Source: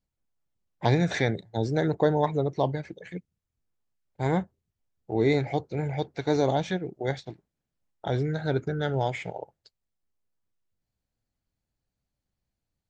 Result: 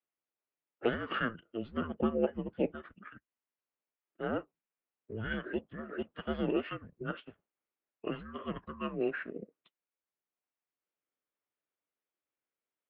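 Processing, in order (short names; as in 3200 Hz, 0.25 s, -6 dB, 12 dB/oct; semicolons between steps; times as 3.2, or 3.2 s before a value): added harmonics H 7 -42 dB, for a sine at -8.5 dBFS; formant shift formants -3 st; mistuned SSB -230 Hz 510–3100 Hz; gain -1.5 dB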